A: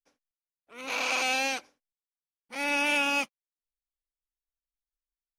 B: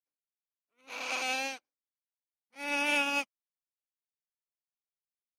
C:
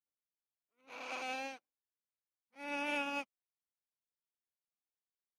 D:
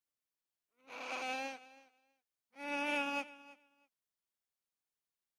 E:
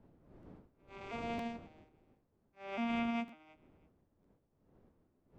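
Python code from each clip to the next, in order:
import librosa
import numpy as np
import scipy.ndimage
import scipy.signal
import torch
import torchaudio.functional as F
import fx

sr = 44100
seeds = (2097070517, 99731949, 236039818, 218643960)

y1 = fx.upward_expand(x, sr, threshold_db=-46.0, expansion=2.5)
y1 = y1 * 10.0 ** (-1.5 / 20.0)
y2 = fx.high_shelf(y1, sr, hz=2600.0, db=-11.0)
y2 = y2 * 10.0 ** (-4.5 / 20.0)
y3 = fx.echo_feedback(y2, sr, ms=323, feedback_pct=15, wet_db=-19.5)
y3 = y3 * 10.0 ** (1.0 / 20.0)
y4 = fx.vocoder_arp(y3, sr, chord='major triad', root=51, every_ms=554)
y4 = fx.dmg_wind(y4, sr, seeds[0], corner_hz=340.0, level_db=-60.0)
y4 = fx.buffer_crackle(y4, sr, first_s=0.42, period_s=0.95, block=512, kind='repeat')
y4 = y4 * 10.0 ** (1.5 / 20.0)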